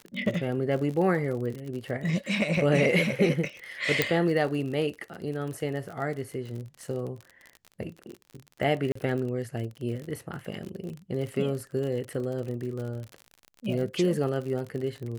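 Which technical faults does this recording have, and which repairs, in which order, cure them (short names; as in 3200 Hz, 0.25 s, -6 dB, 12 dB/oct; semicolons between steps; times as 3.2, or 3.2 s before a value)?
crackle 48/s -34 dBFS
4.02 pop -7 dBFS
8.92–8.95 gap 34 ms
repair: de-click; interpolate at 8.92, 34 ms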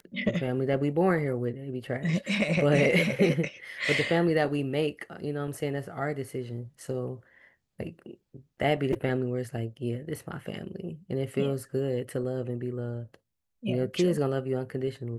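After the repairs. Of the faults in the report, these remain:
none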